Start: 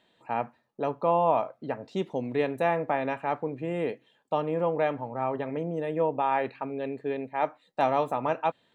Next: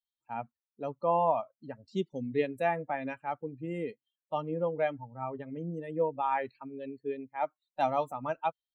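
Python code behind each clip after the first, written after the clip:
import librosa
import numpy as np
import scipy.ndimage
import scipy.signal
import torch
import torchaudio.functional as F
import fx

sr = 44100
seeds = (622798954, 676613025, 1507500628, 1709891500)

y = fx.bin_expand(x, sr, power=2.0)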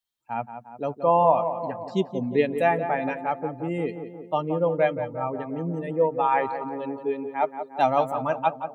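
y = fx.echo_tape(x, sr, ms=176, feedback_pct=68, wet_db=-8, lp_hz=1400.0, drive_db=11.0, wow_cents=14)
y = F.gain(torch.from_numpy(y), 7.5).numpy()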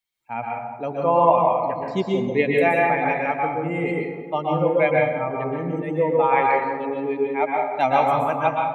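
y = fx.peak_eq(x, sr, hz=2200.0, db=14.0, octaves=0.23)
y = fx.rev_plate(y, sr, seeds[0], rt60_s=0.71, hf_ratio=0.65, predelay_ms=110, drr_db=-1.5)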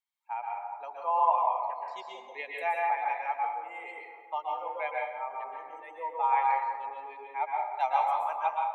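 y = fx.dynamic_eq(x, sr, hz=1300.0, q=0.81, threshold_db=-32.0, ratio=4.0, max_db=-5)
y = fx.ladder_highpass(y, sr, hz=800.0, resonance_pct=60)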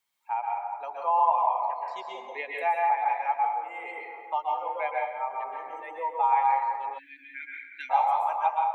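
y = fx.spec_erase(x, sr, start_s=6.98, length_s=0.92, low_hz=360.0, high_hz=1400.0)
y = fx.dynamic_eq(y, sr, hz=830.0, q=2.5, threshold_db=-37.0, ratio=4.0, max_db=5)
y = fx.band_squash(y, sr, depth_pct=40)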